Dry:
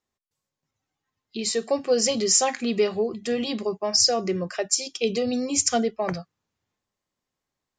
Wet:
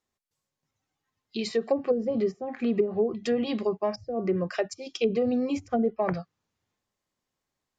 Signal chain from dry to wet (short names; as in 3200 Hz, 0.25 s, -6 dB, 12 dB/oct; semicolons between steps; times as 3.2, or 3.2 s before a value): treble ducked by the level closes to 330 Hz, closed at -17 dBFS